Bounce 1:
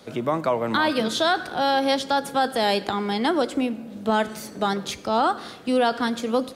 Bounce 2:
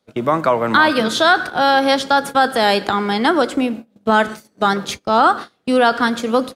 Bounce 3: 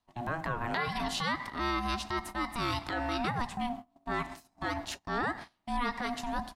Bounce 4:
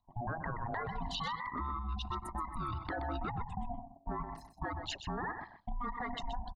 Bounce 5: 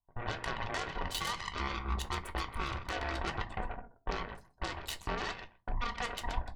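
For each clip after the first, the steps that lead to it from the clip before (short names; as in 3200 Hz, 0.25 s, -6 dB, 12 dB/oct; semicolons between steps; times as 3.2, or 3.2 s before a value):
gate -32 dBFS, range -27 dB; dynamic EQ 1400 Hz, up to +6 dB, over -38 dBFS, Q 1.6; gain +5.5 dB
compressor, threshold -16 dBFS, peak gain reduction 8.5 dB; transient shaper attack -7 dB, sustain -1 dB; ring modulator 480 Hz; gain -8.5 dB
formant sharpening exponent 3; compressor, threshold -38 dBFS, peak gain reduction 10.5 dB; on a send: echo 0.126 s -9.5 dB; on the sum: gain +3 dB
added harmonics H 6 -10 dB, 7 -15 dB, 8 -9 dB, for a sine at -24.5 dBFS; reverb RT60 0.25 s, pre-delay 3 ms, DRR 6 dB; mismatched tape noise reduction decoder only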